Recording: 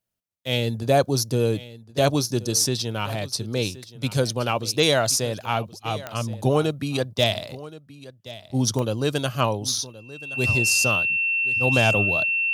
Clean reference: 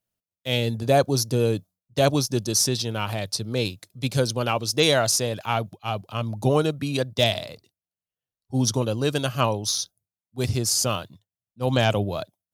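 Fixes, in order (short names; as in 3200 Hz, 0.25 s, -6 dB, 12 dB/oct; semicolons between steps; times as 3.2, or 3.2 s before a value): de-click; notch 2700 Hz, Q 30; inverse comb 1.074 s -17.5 dB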